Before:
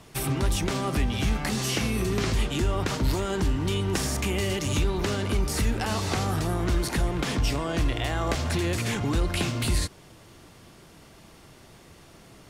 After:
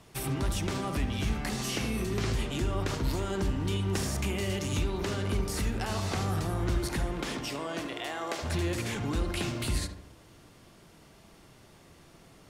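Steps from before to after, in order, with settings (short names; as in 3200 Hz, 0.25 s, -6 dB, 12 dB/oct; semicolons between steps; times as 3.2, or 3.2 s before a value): 7.1–8.42 HPF 170 Hz -> 390 Hz 12 dB/oct; darkening echo 72 ms, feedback 54%, low-pass 1700 Hz, level -7 dB; gain -5.5 dB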